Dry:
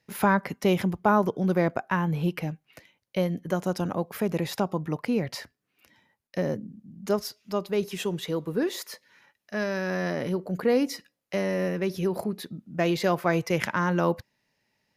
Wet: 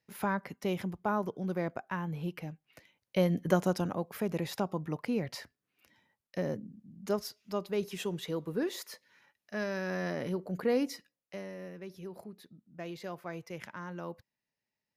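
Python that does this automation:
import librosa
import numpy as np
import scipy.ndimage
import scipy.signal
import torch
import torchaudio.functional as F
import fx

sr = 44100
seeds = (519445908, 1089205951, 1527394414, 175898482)

y = fx.gain(x, sr, db=fx.line((2.53, -10.0), (3.48, 2.0), (3.96, -6.0), (10.84, -6.0), (11.56, -17.0)))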